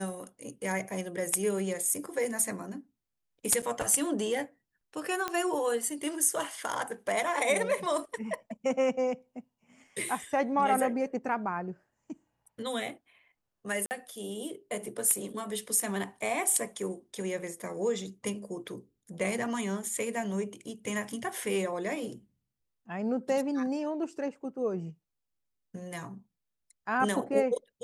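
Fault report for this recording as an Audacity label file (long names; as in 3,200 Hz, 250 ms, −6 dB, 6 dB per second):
3.620000	3.630000	drop-out 6.8 ms
5.280000	5.280000	click −16 dBFS
13.860000	13.910000	drop-out 49 ms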